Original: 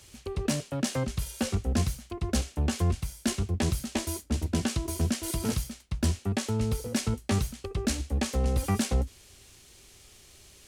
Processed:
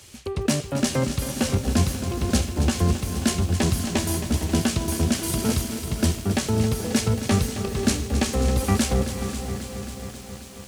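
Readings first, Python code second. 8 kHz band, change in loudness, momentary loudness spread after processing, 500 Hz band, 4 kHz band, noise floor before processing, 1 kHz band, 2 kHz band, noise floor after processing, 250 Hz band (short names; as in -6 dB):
+7.0 dB, +6.0 dB, 8 LU, +7.5 dB, +7.0 dB, -55 dBFS, +7.0 dB, +7.0 dB, -40 dBFS, +7.0 dB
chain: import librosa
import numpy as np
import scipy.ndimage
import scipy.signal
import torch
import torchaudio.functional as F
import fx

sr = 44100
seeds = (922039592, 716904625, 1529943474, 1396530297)

p1 = scipy.signal.sosfilt(scipy.signal.butter(2, 66.0, 'highpass', fs=sr, output='sos'), x)
p2 = p1 + fx.echo_diffused(p1, sr, ms=492, feedback_pct=47, wet_db=-11.5, dry=0)
p3 = fx.echo_crushed(p2, sr, ms=269, feedback_pct=80, bits=8, wet_db=-10.5)
y = p3 * librosa.db_to_amplitude(6.0)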